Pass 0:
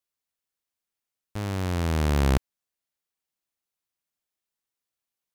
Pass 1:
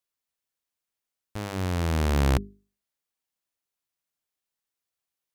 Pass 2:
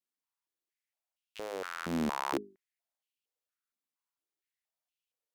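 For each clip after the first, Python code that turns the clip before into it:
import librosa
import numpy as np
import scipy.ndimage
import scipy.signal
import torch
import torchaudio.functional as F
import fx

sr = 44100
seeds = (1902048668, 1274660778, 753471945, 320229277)

y1 = fx.hum_notches(x, sr, base_hz=50, count=8)
y2 = fx.wow_flutter(y1, sr, seeds[0], rate_hz=2.1, depth_cents=78.0)
y2 = fx.filter_held_highpass(y2, sr, hz=4.3, low_hz=230.0, high_hz=2800.0)
y2 = y2 * 10.0 ** (-8.5 / 20.0)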